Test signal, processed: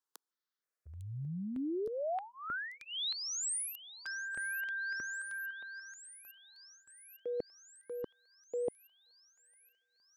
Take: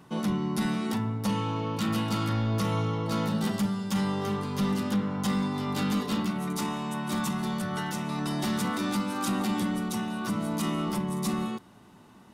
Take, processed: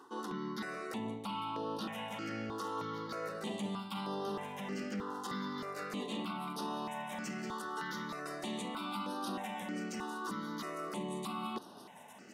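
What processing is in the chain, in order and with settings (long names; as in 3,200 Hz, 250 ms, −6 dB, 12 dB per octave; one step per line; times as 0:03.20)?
high-pass filter 350 Hz 12 dB per octave
high-shelf EQ 7,000 Hz −11 dB
reversed playback
downward compressor 5 to 1, threshold −42 dBFS
reversed playback
delay with a high-pass on its return 853 ms, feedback 71%, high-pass 4,500 Hz, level −11 dB
step-sequenced phaser 3.2 Hz 620–7,400 Hz
level +7 dB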